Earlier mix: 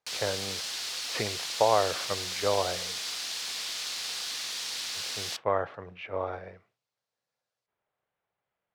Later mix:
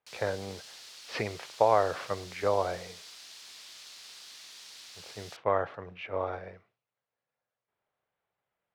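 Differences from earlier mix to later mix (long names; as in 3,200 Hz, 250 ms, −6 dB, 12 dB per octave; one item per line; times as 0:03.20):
background −11.5 dB
reverb: off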